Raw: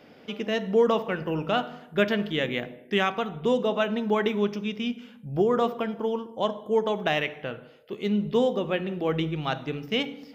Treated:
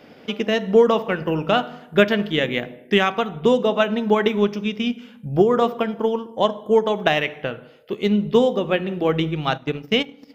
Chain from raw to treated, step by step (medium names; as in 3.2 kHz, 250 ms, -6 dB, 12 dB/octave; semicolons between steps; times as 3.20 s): transient shaper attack +4 dB, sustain -1 dB, from 9.56 s sustain -11 dB; trim +5 dB